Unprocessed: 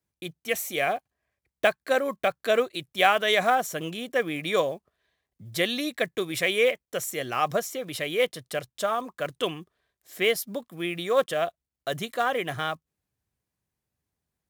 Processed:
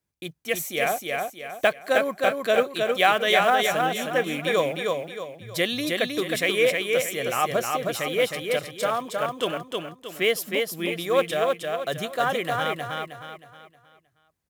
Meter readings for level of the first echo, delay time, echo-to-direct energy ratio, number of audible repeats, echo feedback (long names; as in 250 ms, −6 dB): −3.5 dB, 314 ms, −3.0 dB, 4, 38%